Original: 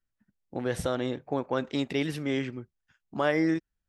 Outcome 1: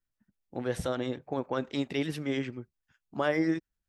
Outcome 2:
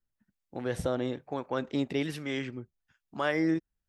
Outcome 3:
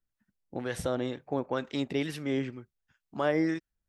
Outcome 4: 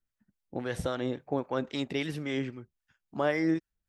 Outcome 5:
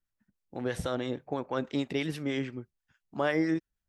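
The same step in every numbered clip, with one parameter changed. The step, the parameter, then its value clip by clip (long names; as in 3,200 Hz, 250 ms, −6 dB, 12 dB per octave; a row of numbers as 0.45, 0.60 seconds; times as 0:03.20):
two-band tremolo in antiphase, speed: 10, 1.1, 2.1, 3.7, 6.2 Hertz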